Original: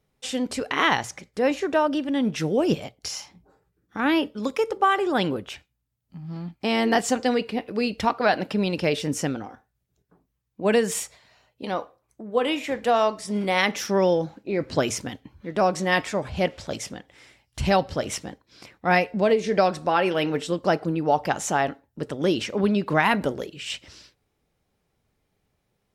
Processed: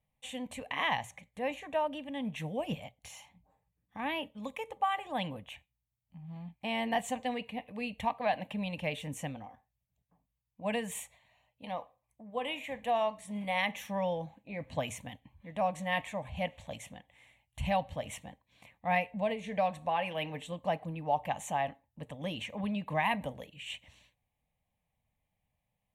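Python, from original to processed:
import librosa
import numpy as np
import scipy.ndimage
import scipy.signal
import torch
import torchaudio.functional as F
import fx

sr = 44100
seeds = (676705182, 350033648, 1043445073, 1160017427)

y = fx.fixed_phaser(x, sr, hz=1400.0, stages=6)
y = y * librosa.db_to_amplitude(-7.5)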